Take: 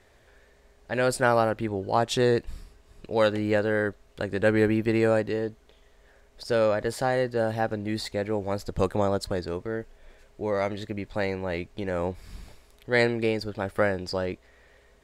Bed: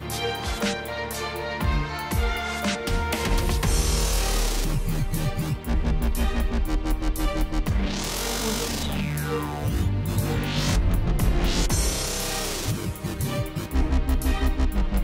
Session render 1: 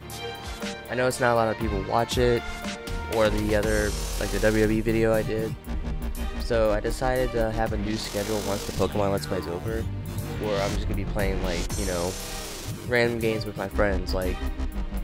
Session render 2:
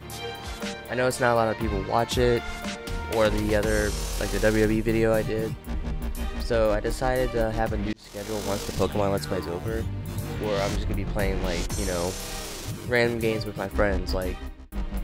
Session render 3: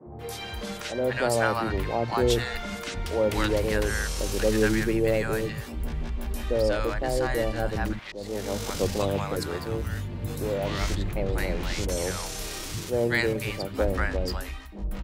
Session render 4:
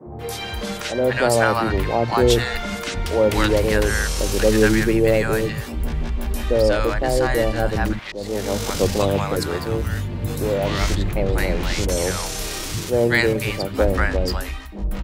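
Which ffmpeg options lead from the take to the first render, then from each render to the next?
ffmpeg -i in.wav -i bed.wav -filter_complex "[1:a]volume=-7dB[link_01];[0:a][link_01]amix=inputs=2:normalize=0" out.wav
ffmpeg -i in.wav -filter_complex "[0:a]asplit=3[link_01][link_02][link_03];[link_01]atrim=end=7.93,asetpts=PTS-STARTPTS,afade=type=out:start_time=7.926:duration=0.004:curve=hsin[link_04];[link_02]atrim=start=7.93:end=14.72,asetpts=PTS-STARTPTS,afade=type=in:duration=0.58,afade=type=out:start_time=6.21:duration=0.58[link_05];[link_03]atrim=start=14.72,asetpts=PTS-STARTPTS,afade=type=in:duration=0.004:curve=hsin[link_06];[link_04][link_05][link_06]concat=n=3:v=0:a=1" out.wav
ffmpeg -i in.wav -filter_complex "[0:a]acrossover=split=190|800[link_01][link_02][link_03];[link_01]adelay=60[link_04];[link_03]adelay=190[link_05];[link_04][link_02][link_05]amix=inputs=3:normalize=0" out.wav
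ffmpeg -i in.wav -af "volume=7dB,alimiter=limit=-3dB:level=0:latency=1" out.wav

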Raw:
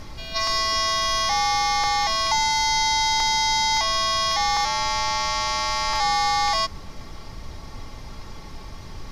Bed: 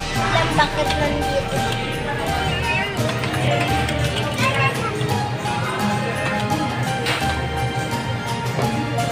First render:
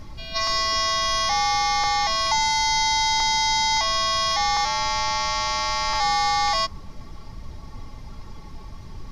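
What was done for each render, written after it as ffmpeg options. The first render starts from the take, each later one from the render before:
ffmpeg -i in.wav -af "afftdn=noise_reduction=7:noise_floor=-38" out.wav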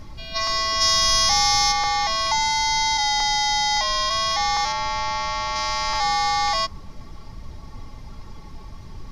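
ffmpeg -i in.wav -filter_complex "[0:a]asplit=3[link_01][link_02][link_03];[link_01]afade=type=out:start_time=0.8:duration=0.02[link_04];[link_02]bass=frequency=250:gain=5,treble=frequency=4000:gain=11,afade=type=in:start_time=0.8:duration=0.02,afade=type=out:start_time=1.71:duration=0.02[link_05];[link_03]afade=type=in:start_time=1.71:duration=0.02[link_06];[link_04][link_05][link_06]amix=inputs=3:normalize=0,asplit=3[link_07][link_08][link_09];[link_07]afade=type=out:start_time=2.97:duration=0.02[link_10];[link_08]afreqshift=-38,afade=type=in:start_time=2.97:duration=0.02,afade=type=out:start_time=4.09:duration=0.02[link_11];[link_09]afade=type=in:start_time=4.09:duration=0.02[link_12];[link_10][link_11][link_12]amix=inputs=3:normalize=0,asettb=1/sr,asplit=3[link_13][link_14][link_15];[link_13]atrim=end=4.724[link_16];[link_14]atrim=start=4.72:end=5.56,asetpts=PTS-STARTPTS,afade=type=in:duration=0.004:curve=qsin,afade=type=out:start_time=0.836:duration=0.004:curve=qsin,highshelf=frequency=5400:gain=-11[link_17];[link_15]atrim=start=5.556[link_18];[link_16][link_17]acrossfade=duration=0.004:curve1=hsin:curve2=qsin[link_19];[link_19][link_18]acrossfade=duration=0.004:curve1=qsin:curve2=hsin" out.wav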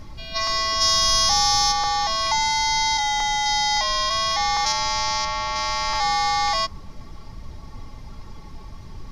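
ffmpeg -i in.wav -filter_complex "[0:a]asettb=1/sr,asplit=3[link_01][link_02][link_03];[link_01]atrim=end=0.744[link_04];[link_02]atrim=start=0.74:end=2.23,asetpts=PTS-STARTPTS,afade=type=in:duration=0.004:curve=qsin,afade=type=out:start_time=1.486:duration=0.004:curve=qsin,equalizer=frequency=2200:width_type=o:width=0.23:gain=-10[link_05];[link_03]atrim=start=2.226[link_06];[link_04][link_05]acrossfade=duration=0.004:curve1=hsin:curve2=qsin[link_07];[link_07][link_06]acrossfade=duration=0.004:curve1=qsin:curve2=hsin,asettb=1/sr,asplit=3[link_08][link_09][link_10];[link_08]atrim=end=2.994[link_11];[link_09]atrim=start=2.99:end=3.46,asetpts=PTS-STARTPTS,afade=type=in:duration=0.004:curve=qsin,afade=type=out:start_time=0.466:duration=0.004:curve=qsin,equalizer=frequency=4700:width_type=o:width=0.28:gain=-12[link_12];[link_10]atrim=start=3.456[link_13];[link_11][link_12]acrossfade=duration=0.004:curve1=hsin:curve2=qsin[link_14];[link_14][link_13]acrossfade=duration=0.004:curve1=qsin:curve2=hsin,asettb=1/sr,asplit=3[link_15][link_16][link_17];[link_15]atrim=end=4.664[link_18];[link_16]atrim=start=4.66:end=5.25,asetpts=PTS-STARTPTS,afade=type=in:duration=0.004:curve=qsin,afade=type=out:start_time=0.586:duration=0.004:curve=qsin,bass=frequency=250:gain=0,treble=frequency=4000:gain=11[link_19];[link_17]atrim=start=5.246[link_20];[link_18][link_19]acrossfade=duration=0.004:curve1=hsin:curve2=qsin[link_21];[link_21][link_20]acrossfade=duration=0.004:curve1=qsin:curve2=hsin" out.wav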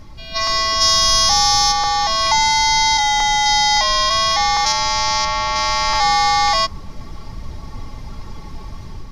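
ffmpeg -i in.wav -af "dynaudnorm=framelen=140:gausssize=5:maxgain=7dB" out.wav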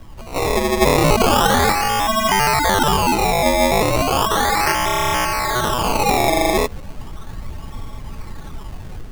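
ffmpeg -i in.wav -filter_complex "[0:a]acrossover=split=130|820|1500[link_01][link_02][link_03][link_04];[link_03]asoftclip=type=hard:threshold=-25dB[link_05];[link_01][link_02][link_05][link_04]amix=inputs=4:normalize=0,acrusher=samples=20:mix=1:aa=0.000001:lfo=1:lforange=20:lforate=0.35" out.wav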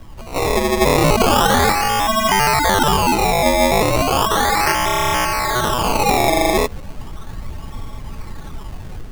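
ffmpeg -i in.wav -af "volume=1dB,alimiter=limit=-3dB:level=0:latency=1" out.wav

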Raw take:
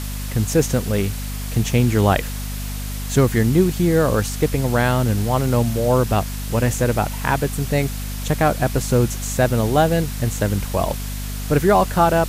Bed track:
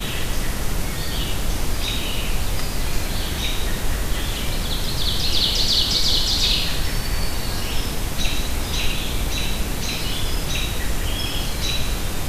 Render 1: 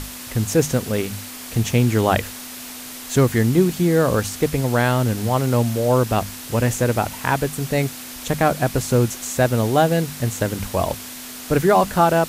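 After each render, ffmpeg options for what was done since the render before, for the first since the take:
ffmpeg -i in.wav -af "bandreject=frequency=50:width_type=h:width=6,bandreject=frequency=100:width_type=h:width=6,bandreject=frequency=150:width_type=h:width=6,bandreject=frequency=200:width_type=h:width=6" out.wav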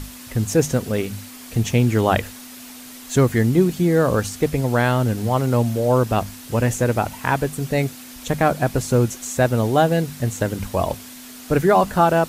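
ffmpeg -i in.wav -af "afftdn=noise_reduction=6:noise_floor=-35" out.wav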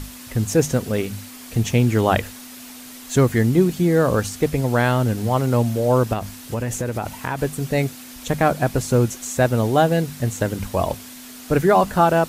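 ffmpeg -i in.wav -filter_complex "[0:a]asettb=1/sr,asplit=3[link_01][link_02][link_03];[link_01]atrim=end=6.134[link_04];[link_02]atrim=start=6.13:end=7.39,asetpts=PTS-STARTPTS,afade=type=in:duration=0.004:curve=qsin,afade=type=out:start_time=1.256:duration=0.004:curve=qsin,acompressor=threshold=-20dB:ratio=6:attack=3.2:release=140:knee=1:detection=peak[link_05];[link_03]atrim=start=7.386[link_06];[link_04][link_05]acrossfade=duration=0.004:curve1=hsin:curve2=qsin[link_07];[link_07][link_06]acrossfade=duration=0.004:curve1=qsin:curve2=hsin" out.wav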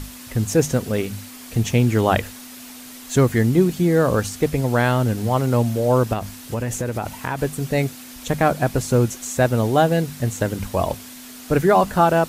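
ffmpeg -i in.wav -af anull out.wav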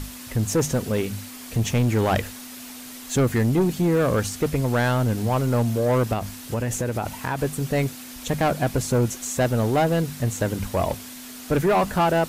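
ffmpeg -i in.wav -af "asoftclip=type=tanh:threshold=-14.5dB" out.wav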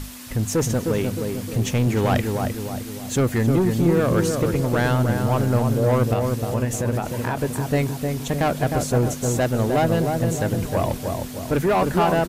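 ffmpeg -i in.wav -filter_complex "[0:a]asplit=2[link_01][link_02];[link_02]adelay=308,lowpass=frequency=1200:poles=1,volume=-3.5dB,asplit=2[link_03][link_04];[link_04]adelay=308,lowpass=frequency=1200:poles=1,volume=0.53,asplit=2[link_05][link_06];[link_06]adelay=308,lowpass=frequency=1200:poles=1,volume=0.53,asplit=2[link_07][link_08];[link_08]adelay=308,lowpass=frequency=1200:poles=1,volume=0.53,asplit=2[link_09][link_10];[link_10]adelay=308,lowpass=frequency=1200:poles=1,volume=0.53,asplit=2[link_11][link_12];[link_12]adelay=308,lowpass=frequency=1200:poles=1,volume=0.53,asplit=2[link_13][link_14];[link_14]adelay=308,lowpass=frequency=1200:poles=1,volume=0.53[link_15];[link_01][link_03][link_05][link_07][link_09][link_11][link_13][link_15]amix=inputs=8:normalize=0" out.wav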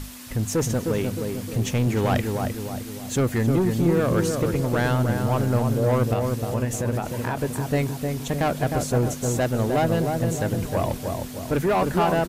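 ffmpeg -i in.wav -af "volume=-2dB" out.wav

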